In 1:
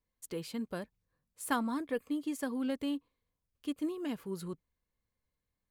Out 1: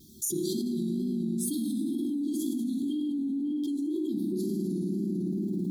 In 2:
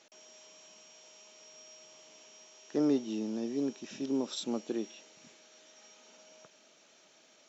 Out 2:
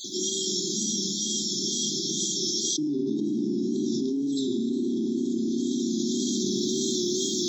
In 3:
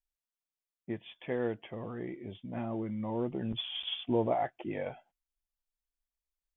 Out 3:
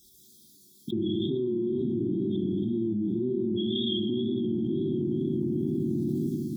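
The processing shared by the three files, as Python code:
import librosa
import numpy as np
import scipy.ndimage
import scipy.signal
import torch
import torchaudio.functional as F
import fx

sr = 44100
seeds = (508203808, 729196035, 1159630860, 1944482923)

y = fx.spec_dropout(x, sr, seeds[0], share_pct=26)
y = fx.rider(y, sr, range_db=4, speed_s=2.0)
y = scipy.signal.sosfilt(scipy.signal.butter(2, 190.0, 'highpass', fs=sr, output='sos'), y)
y = fx.low_shelf(y, sr, hz=380.0, db=9.5)
y = fx.rev_fdn(y, sr, rt60_s=2.1, lf_ratio=1.5, hf_ratio=0.75, size_ms=15.0, drr_db=-3.0)
y = fx.wow_flutter(y, sr, seeds[1], rate_hz=2.1, depth_cents=70.0)
y = fx.brickwall_bandstop(y, sr, low_hz=390.0, high_hz=3200.0)
y = fx.env_flatten(y, sr, amount_pct=100)
y = y * 10.0 ** (-7.5 / 20.0)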